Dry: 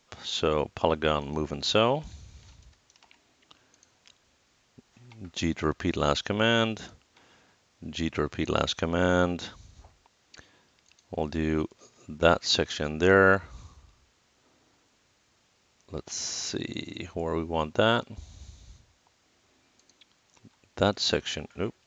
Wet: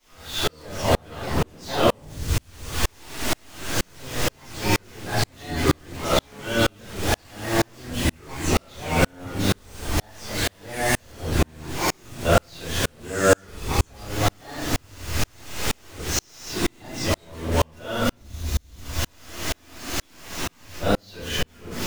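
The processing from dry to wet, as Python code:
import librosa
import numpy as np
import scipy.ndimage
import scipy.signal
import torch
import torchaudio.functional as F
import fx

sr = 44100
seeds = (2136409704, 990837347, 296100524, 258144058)

y = x + 0.5 * 10.0 ** (-21.0 / 20.0) * np.sign(x)
y = fx.room_shoebox(y, sr, seeds[0], volume_m3=100.0, walls='mixed', distance_m=3.8)
y = fx.echo_pitch(y, sr, ms=284, semitones=4, count=2, db_per_echo=-3.0)
y = fx.tremolo_decay(y, sr, direction='swelling', hz=2.1, depth_db=40)
y = y * librosa.db_to_amplitude(-9.5)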